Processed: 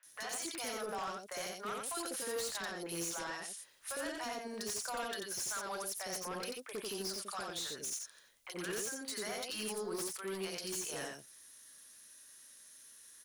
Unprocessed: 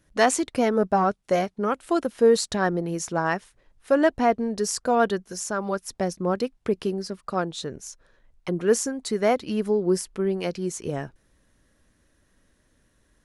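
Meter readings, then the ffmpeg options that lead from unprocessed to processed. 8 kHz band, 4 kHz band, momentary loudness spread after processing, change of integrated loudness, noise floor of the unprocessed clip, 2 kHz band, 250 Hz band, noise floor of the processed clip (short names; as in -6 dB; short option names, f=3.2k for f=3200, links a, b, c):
-6.0 dB, -5.0 dB, 16 LU, -14.5 dB, -66 dBFS, -11.5 dB, -20.0 dB, -61 dBFS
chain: -filter_complex "[0:a]bandreject=f=7.7k:w=15,acrossover=split=3100[a][b];[b]acompressor=threshold=-37dB:ratio=4:attack=1:release=60[c];[a][c]amix=inputs=2:normalize=0,aderivative,acompressor=threshold=-48dB:ratio=3,alimiter=level_in=17.5dB:limit=-24dB:level=0:latency=1:release=43,volume=-17.5dB,acrossover=split=620|2300[d][e][f];[f]adelay=30[g];[d]adelay=60[h];[h][e][g]amix=inputs=3:normalize=0,aeval=exprs='0.0133*sin(PI/2*3.16*val(0)/0.0133)':c=same,asplit=2[i][j];[j]aecho=0:1:89:0.668[k];[i][k]amix=inputs=2:normalize=0,volume=1.5dB"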